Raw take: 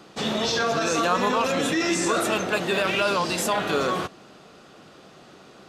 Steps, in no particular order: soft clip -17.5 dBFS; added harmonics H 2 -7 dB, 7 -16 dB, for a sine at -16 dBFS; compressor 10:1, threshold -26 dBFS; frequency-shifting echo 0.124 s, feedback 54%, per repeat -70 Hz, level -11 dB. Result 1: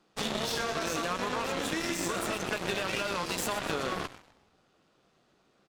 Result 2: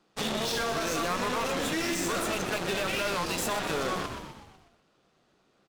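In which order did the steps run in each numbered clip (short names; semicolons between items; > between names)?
frequency-shifting echo > soft clip > compressor > added harmonics; added harmonics > soft clip > frequency-shifting echo > compressor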